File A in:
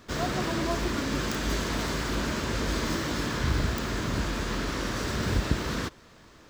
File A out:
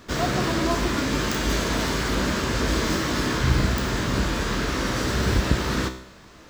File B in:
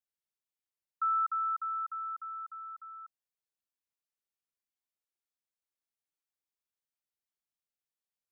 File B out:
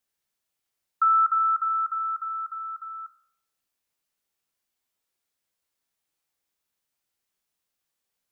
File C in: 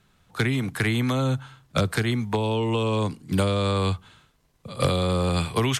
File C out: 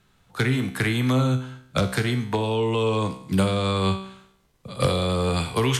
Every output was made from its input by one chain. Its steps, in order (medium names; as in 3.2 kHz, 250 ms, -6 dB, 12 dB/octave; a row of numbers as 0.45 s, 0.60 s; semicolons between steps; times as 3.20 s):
feedback comb 64 Hz, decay 0.68 s, harmonics all, mix 70%; normalise loudness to -24 LUFS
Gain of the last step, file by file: +13.0 dB, +18.5 dB, +8.0 dB